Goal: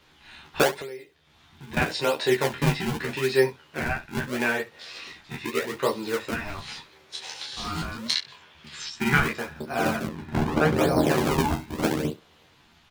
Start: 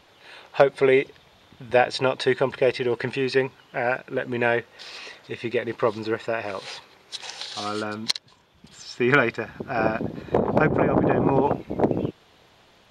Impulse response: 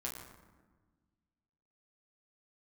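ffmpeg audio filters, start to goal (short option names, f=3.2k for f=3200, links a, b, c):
-filter_complex "[0:a]flanger=delay=22.5:depth=4.1:speed=1.2,asettb=1/sr,asplit=3[a][b][c];[a]atrim=end=8.134[d];[b]atrim=start=8.13:end=8.89,asetpts=PTS-STARTPTS,afade=t=in:d=0.004:c=qsin,afade=t=out:st=0.756:d=0.004:c=qsin,equalizer=f=2.2k:w=0.43:g=13.5[e];[c]atrim=start=8.886[f];[d][e]acrossfade=d=0.004:c1=hsin:c2=qsin[g];[g][f]acrossfade=d=0.004:c1=qsin:c2=hsin,acrossover=split=180|730[h][i][j];[i]acrusher=samples=42:mix=1:aa=0.000001:lfo=1:lforange=67.2:lforate=0.8[k];[h][k][j]amix=inputs=3:normalize=0,asettb=1/sr,asplit=3[l][m][n];[l]atrim=end=10.074[o];[m]atrim=start=10.07:end=10.77,asetpts=PTS-STARTPTS,afade=t=in:d=0.004:c=qsin,afade=t=out:st=0.696:d=0.004:c=qsin,highshelf=f=4.6k:g=-12[p];[n]atrim=start=10.766[q];[o][p]acrossfade=d=0.004:c1=hsin:c2=qsin[r];[r][q]acrossfade=d=0.004:c1=qsin:c2=hsin,asplit=2[s][t];[t]aecho=0:1:13|69:0.668|0.133[u];[s][u]amix=inputs=2:normalize=0,asettb=1/sr,asplit=3[v][w][x];[v]atrim=end=0.794[y];[w]atrim=start=0.79:end=1.77,asetpts=PTS-STARTPTS,afade=t=in:d=0.004:c=qsin,afade=t=out:st=0.976:d=0.004:c=qsin,acompressor=threshold=-36dB:ratio=10[z];[x]atrim=start=1.766[aa];[y][z]acrossfade=d=0.004:c1=hsin:c2=qsin[ab];[ab][aa]acrossfade=d=0.004:c1=qsin:c2=hsin"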